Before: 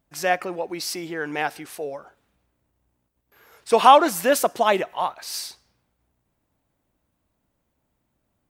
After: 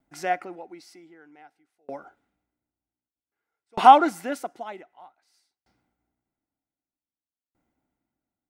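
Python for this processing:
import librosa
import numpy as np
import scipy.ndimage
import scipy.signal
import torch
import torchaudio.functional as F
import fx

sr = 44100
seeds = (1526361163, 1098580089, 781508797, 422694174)

y = fx.peak_eq(x, sr, hz=13000.0, db=-12.5, octaves=0.21)
y = fx.small_body(y, sr, hz=(290.0, 760.0, 1400.0, 2000.0), ring_ms=20, db=11)
y = fx.tremolo_decay(y, sr, direction='decaying', hz=0.53, depth_db=38)
y = y * 10.0 ** (-5.0 / 20.0)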